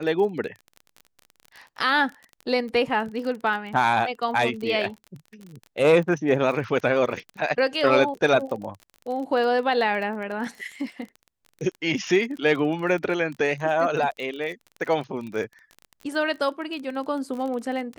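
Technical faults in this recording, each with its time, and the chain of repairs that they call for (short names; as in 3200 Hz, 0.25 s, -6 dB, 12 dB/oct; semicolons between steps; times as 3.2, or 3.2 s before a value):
crackle 29/s -32 dBFS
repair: de-click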